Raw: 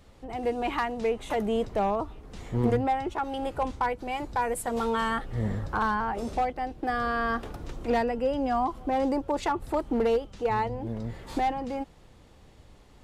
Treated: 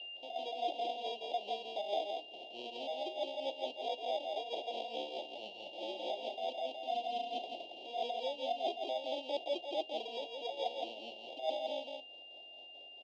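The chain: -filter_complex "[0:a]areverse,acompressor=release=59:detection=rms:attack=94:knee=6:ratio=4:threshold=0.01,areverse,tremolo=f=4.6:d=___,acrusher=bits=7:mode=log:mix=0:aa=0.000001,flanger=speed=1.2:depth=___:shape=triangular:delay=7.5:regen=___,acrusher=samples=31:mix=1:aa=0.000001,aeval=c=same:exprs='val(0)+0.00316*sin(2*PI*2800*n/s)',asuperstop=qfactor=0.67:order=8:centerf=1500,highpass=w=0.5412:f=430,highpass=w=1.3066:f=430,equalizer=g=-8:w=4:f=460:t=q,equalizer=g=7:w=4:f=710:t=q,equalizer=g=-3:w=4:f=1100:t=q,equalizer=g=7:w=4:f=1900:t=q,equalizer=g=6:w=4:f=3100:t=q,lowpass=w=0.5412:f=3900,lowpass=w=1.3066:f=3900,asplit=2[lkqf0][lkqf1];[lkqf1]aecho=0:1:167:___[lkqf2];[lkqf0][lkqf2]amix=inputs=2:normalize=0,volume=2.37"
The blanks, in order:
0.67, 3.6, -75, 0.631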